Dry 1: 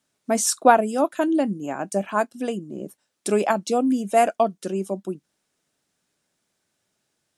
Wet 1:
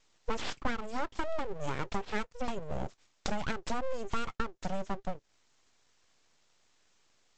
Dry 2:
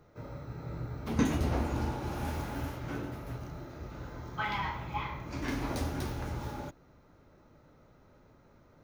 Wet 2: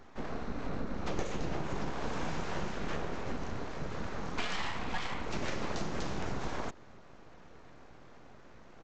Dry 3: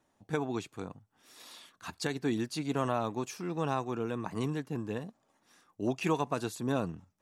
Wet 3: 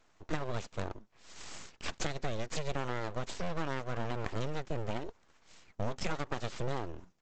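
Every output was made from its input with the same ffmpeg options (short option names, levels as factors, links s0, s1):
-af "acompressor=threshold=0.0141:ratio=8,aresample=16000,aeval=exprs='abs(val(0))':c=same,aresample=44100,volume=2.51"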